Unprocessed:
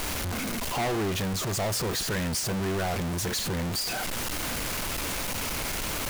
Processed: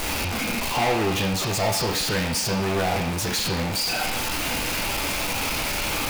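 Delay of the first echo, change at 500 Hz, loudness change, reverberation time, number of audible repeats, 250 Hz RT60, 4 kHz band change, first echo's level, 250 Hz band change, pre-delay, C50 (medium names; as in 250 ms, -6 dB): no echo, +5.5 dB, +5.0 dB, 0.70 s, no echo, 0.70 s, +6.5 dB, no echo, +4.0 dB, 10 ms, 4.0 dB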